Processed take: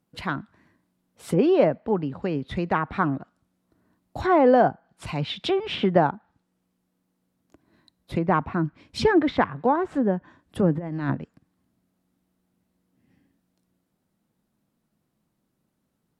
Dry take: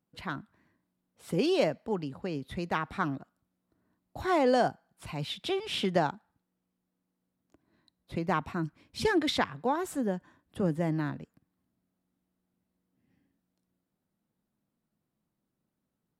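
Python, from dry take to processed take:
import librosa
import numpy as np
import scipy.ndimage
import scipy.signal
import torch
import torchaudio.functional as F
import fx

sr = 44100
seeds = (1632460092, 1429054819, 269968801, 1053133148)

y = fx.over_compress(x, sr, threshold_db=-34.0, ratio=-0.5, at=(10.75, 11.15))
y = fx.env_lowpass_down(y, sr, base_hz=1600.0, full_db=-28.5)
y = y * 10.0 ** (8.0 / 20.0)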